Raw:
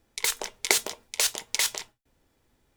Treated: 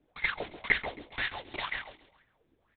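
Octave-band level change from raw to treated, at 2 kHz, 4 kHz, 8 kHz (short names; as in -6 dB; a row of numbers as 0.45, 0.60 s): +1.0 dB, -11.5 dB, under -40 dB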